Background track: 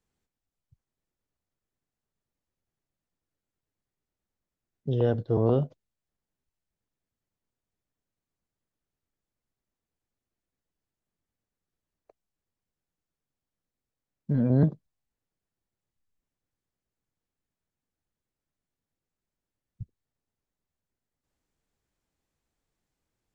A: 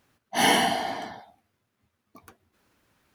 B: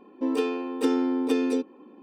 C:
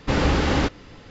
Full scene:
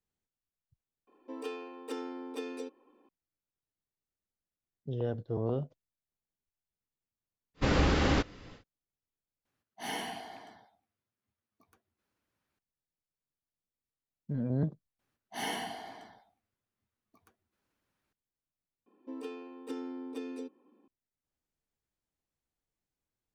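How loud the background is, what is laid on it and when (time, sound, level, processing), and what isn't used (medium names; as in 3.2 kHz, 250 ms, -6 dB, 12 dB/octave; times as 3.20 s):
background track -9 dB
1.07 s: add B -10.5 dB + high-pass 400 Hz
7.54 s: add C -6 dB, fades 0.10 s + band-stop 870 Hz, Q 22
9.45 s: replace with A -17 dB + rattle on loud lows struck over -38 dBFS, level -27 dBFS
14.99 s: add A -15.5 dB
18.86 s: replace with B -16 dB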